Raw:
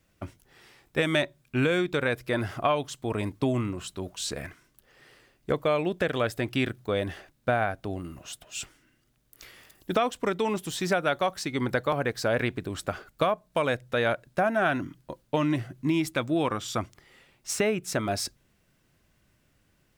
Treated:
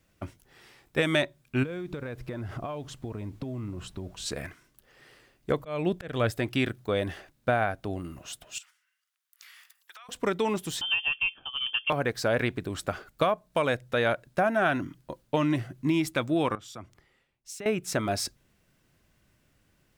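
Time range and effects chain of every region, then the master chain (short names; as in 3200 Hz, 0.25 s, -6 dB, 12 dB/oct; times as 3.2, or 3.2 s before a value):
1.62–4.25 tilt -2.5 dB/oct + compressor 12:1, threshold -31 dBFS + added noise pink -67 dBFS
5.58–6.31 low shelf 150 Hz +10.5 dB + auto swell 0.234 s
8.58–10.09 gate -55 dBFS, range -8 dB + HPF 1100 Hz 24 dB/oct + compressor 8:1, threshold -46 dBFS
10.81–11.9 high shelf 2300 Hz -7 dB + fixed phaser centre 340 Hz, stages 6 + inverted band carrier 3300 Hz
16.55–17.66 compressor 2.5:1, threshold -47 dBFS + three-band expander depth 100%
whole clip: dry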